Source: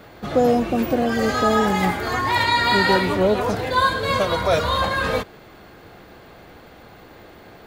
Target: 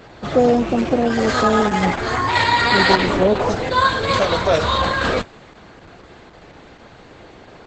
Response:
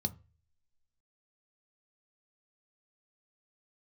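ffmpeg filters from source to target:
-af "volume=3dB" -ar 48000 -c:a libopus -b:a 10k

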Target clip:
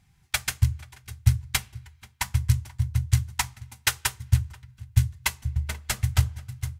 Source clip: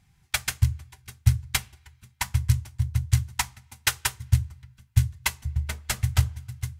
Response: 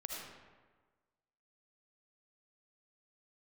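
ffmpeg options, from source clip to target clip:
-filter_complex "[0:a]asplit=2[a][b];[b]adelay=484,volume=-21dB,highshelf=f=4k:g=-10.9[c];[a][c]amix=inputs=2:normalize=0"

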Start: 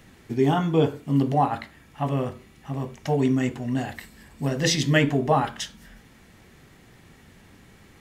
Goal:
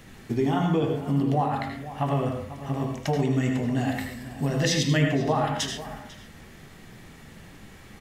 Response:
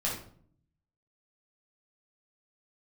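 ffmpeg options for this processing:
-filter_complex "[0:a]bandreject=f=86.56:t=h:w=4,bandreject=f=173.12:t=h:w=4,bandreject=f=259.68:t=h:w=4,bandreject=f=346.24:t=h:w=4,bandreject=f=432.8:t=h:w=4,bandreject=f=519.36:t=h:w=4,bandreject=f=605.92:t=h:w=4,bandreject=f=692.48:t=h:w=4,bandreject=f=779.04:t=h:w=4,bandreject=f=865.6:t=h:w=4,bandreject=f=952.16:t=h:w=4,bandreject=f=1.03872k:t=h:w=4,bandreject=f=1.12528k:t=h:w=4,bandreject=f=1.21184k:t=h:w=4,bandreject=f=1.2984k:t=h:w=4,bandreject=f=1.38496k:t=h:w=4,bandreject=f=1.47152k:t=h:w=4,bandreject=f=1.55808k:t=h:w=4,bandreject=f=1.64464k:t=h:w=4,bandreject=f=1.7312k:t=h:w=4,bandreject=f=1.81776k:t=h:w=4,bandreject=f=1.90432k:t=h:w=4,bandreject=f=1.99088k:t=h:w=4,bandreject=f=2.07744k:t=h:w=4,bandreject=f=2.164k:t=h:w=4,bandreject=f=2.25056k:t=h:w=4,bandreject=f=2.33712k:t=h:w=4,bandreject=f=2.42368k:t=h:w=4,bandreject=f=2.51024k:t=h:w=4,bandreject=f=2.5968k:t=h:w=4,bandreject=f=2.68336k:t=h:w=4,bandreject=f=2.76992k:t=h:w=4,bandreject=f=2.85648k:t=h:w=4,bandreject=f=2.94304k:t=h:w=4,bandreject=f=3.0296k:t=h:w=4,acompressor=threshold=-26dB:ratio=4,asplit=2[a][b];[b]adelay=495.6,volume=-14dB,highshelf=f=4k:g=-11.2[c];[a][c]amix=inputs=2:normalize=0,asplit=2[d][e];[1:a]atrim=start_sample=2205,atrim=end_sample=3087,adelay=77[f];[e][f]afir=irnorm=-1:irlink=0,volume=-9.5dB[g];[d][g]amix=inputs=2:normalize=0,volume=3.5dB"

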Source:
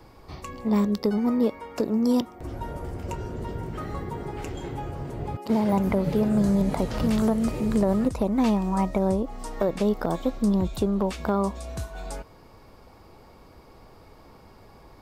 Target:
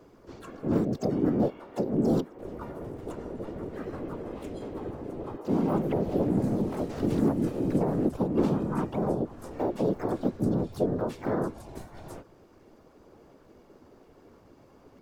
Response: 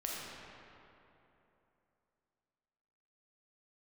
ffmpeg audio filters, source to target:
-filter_complex "[0:a]equalizer=f=310:t=o:w=0.98:g=14,afftfilt=real='hypot(re,im)*cos(2*PI*random(0))':imag='hypot(re,im)*sin(2*PI*random(1))':win_size=512:overlap=0.75,asplit=3[a][b][c];[b]asetrate=55563,aresample=44100,atempo=0.793701,volume=-3dB[d];[c]asetrate=66075,aresample=44100,atempo=0.66742,volume=-7dB[e];[a][d][e]amix=inputs=3:normalize=0,volume=-6.5dB"

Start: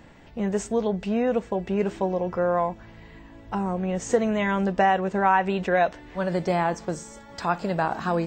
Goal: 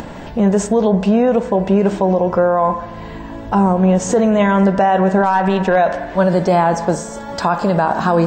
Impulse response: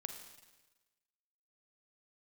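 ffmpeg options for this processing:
-filter_complex "[0:a]acompressor=mode=upward:threshold=-35dB:ratio=2.5,asettb=1/sr,asplit=3[a][b][c];[a]atrim=end=5.234[d];[b]atrim=start=5.23:end=5.76,asetpts=PTS-STARTPTS,afade=t=in:d=0.004:c=qsin,afade=t=out:st=0.526:d=0.004:c=qsin,aeval=exprs='0.398*(cos(1*acos(clip(val(0)/0.398,-1,1)))-cos(1*PI/2))+0.0251*(cos(4*acos(clip(val(0)/0.398,-1,1)))-cos(4*PI/2))+0.0141*(cos(7*acos(clip(val(0)/0.398,-1,1)))-cos(7*PI/2))':c=same[e];[c]atrim=start=5.756[f];[d][e]acrossfade=d=0.004:c1=hsin:c2=qsin[g];[g][f]acrossfade=d=0.004:c1=qsin:c2=hsin,asplit=2[h][i];[i]highpass=170,equalizer=f=190:t=q:w=4:g=5,equalizer=f=310:t=q:w=4:g=-8,equalizer=f=610:t=q:w=4:g=8,equalizer=f=1k:t=q:w=4:g=8,equalizer=f=1.7k:t=q:w=4:g=7,lowpass=f=2.6k:w=0.5412,lowpass=f=2.6k:w=1.3066[j];[1:a]atrim=start_sample=2205,lowshelf=f=180:g=7.5[k];[j][k]afir=irnorm=-1:irlink=0,volume=-6dB[l];[h][l]amix=inputs=2:normalize=0,alimiter=level_in=15dB:limit=-1dB:release=50:level=0:latency=1,volume=-4.5dB"

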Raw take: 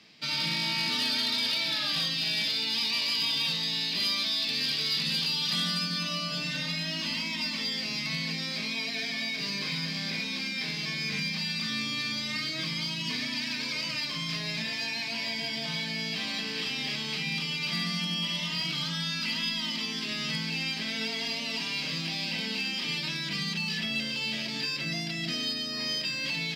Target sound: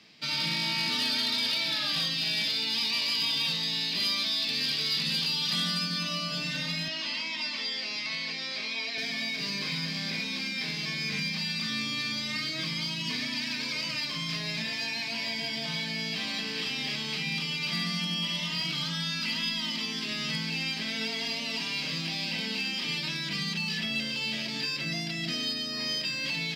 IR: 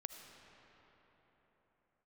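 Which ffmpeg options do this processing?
-filter_complex "[0:a]asettb=1/sr,asplit=3[a][b][c];[a]atrim=end=6.884[d];[b]atrim=start=6.88:end=8.98,asetpts=PTS-STARTPTS,afade=t=in:d=0.004:c=qsin,afade=t=out:st=2.096:d=0.004:c=qsin,acrossover=split=300 6700:gain=0.126 1 0.178[e][f][g];[e][f][g]amix=inputs=3:normalize=0[h];[c]atrim=start=8.976[i];[d][h]acrossfade=d=0.004:c1=hsin:c2=qsin[j];[j][i]acrossfade=d=0.004:c1=qsin:c2=hsin"

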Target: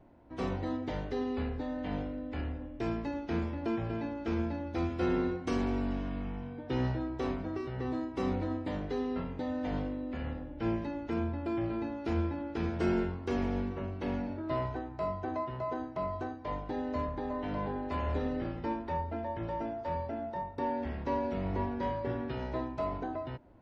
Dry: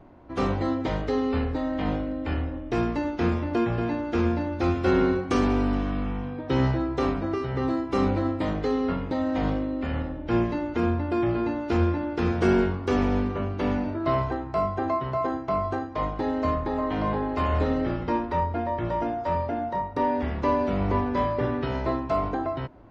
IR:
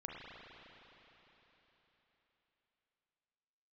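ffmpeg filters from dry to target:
-af "asetrate=42777,aresample=44100,equalizer=f=1.2k:t=o:w=0.22:g=-6.5,volume=-8.5dB"

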